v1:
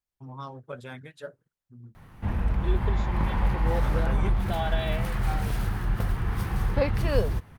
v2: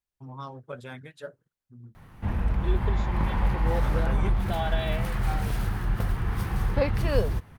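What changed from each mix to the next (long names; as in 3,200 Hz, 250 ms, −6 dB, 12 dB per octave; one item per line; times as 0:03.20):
nothing changed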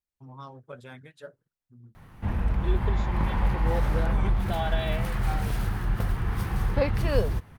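first voice −4.0 dB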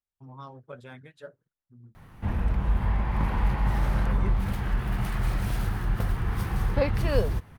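first voice: add high-shelf EQ 5,100 Hz −5.5 dB
second voice: muted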